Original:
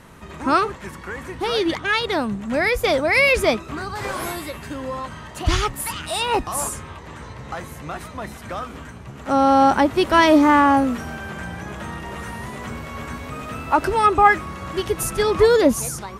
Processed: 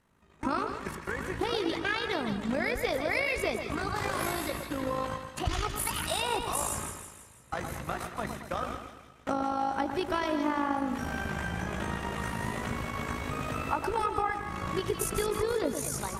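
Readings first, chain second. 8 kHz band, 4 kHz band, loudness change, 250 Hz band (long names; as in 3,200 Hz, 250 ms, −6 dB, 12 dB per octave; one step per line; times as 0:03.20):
−6.5 dB, −9.5 dB, −13.0 dB, −11.5 dB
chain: noise gate with hold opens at −24 dBFS
downward compressor 8 to 1, threshold −25 dBFS, peak gain reduction 17 dB
amplitude modulation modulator 53 Hz, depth 45%
echo with a time of its own for lows and highs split 1,700 Hz, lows 113 ms, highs 163 ms, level −7 dB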